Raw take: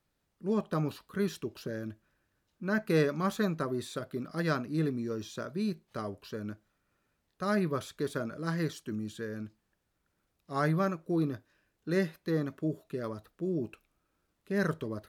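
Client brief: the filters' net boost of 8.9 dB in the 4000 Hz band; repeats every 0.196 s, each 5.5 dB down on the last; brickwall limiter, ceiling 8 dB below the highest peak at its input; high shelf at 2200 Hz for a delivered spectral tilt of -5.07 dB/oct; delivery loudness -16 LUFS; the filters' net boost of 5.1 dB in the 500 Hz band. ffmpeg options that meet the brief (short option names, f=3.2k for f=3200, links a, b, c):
-af "equalizer=f=500:t=o:g=6,highshelf=f=2.2k:g=6.5,equalizer=f=4k:t=o:g=4.5,alimiter=limit=-19dB:level=0:latency=1,aecho=1:1:196|392|588|784|980|1176|1372:0.531|0.281|0.149|0.079|0.0419|0.0222|0.0118,volume=15dB"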